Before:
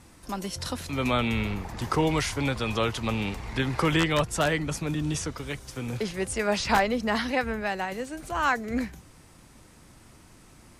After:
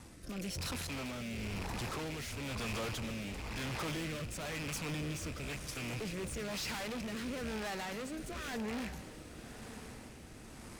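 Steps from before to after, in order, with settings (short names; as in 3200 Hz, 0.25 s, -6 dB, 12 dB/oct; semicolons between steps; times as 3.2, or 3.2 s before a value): rattling part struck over -36 dBFS, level -24 dBFS; tube stage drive 41 dB, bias 0.5; rotary speaker horn 1 Hz; diffused feedback echo 1.106 s, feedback 48%, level -12 dB; gain +4.5 dB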